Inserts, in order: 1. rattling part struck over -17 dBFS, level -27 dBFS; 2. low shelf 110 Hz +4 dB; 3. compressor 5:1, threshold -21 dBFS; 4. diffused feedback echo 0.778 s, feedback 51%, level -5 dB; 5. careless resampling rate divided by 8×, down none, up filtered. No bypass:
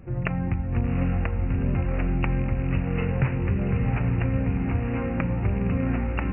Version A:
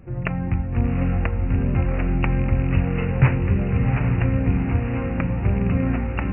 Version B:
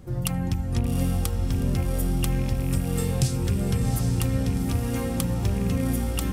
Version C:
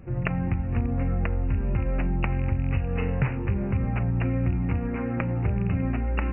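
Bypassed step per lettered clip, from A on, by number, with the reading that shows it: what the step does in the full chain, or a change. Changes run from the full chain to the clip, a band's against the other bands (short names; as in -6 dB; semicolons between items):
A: 3, mean gain reduction 3.0 dB; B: 5, 2 kHz band -5.0 dB; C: 4, loudness change -1.0 LU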